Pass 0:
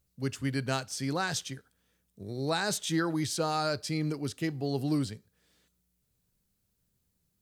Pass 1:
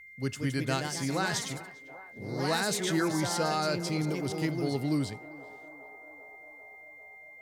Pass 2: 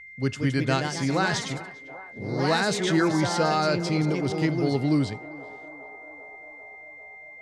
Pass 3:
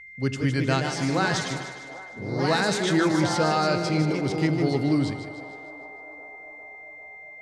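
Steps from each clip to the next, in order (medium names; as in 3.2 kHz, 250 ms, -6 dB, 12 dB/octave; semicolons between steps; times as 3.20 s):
band-passed feedback delay 397 ms, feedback 84%, band-pass 720 Hz, level -15.5 dB; ever faster or slower copies 203 ms, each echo +2 st, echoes 3, each echo -6 dB; whistle 2.1 kHz -48 dBFS
distance through air 81 m; trim +6.5 dB
two-band feedback delay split 380 Hz, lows 82 ms, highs 152 ms, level -9.5 dB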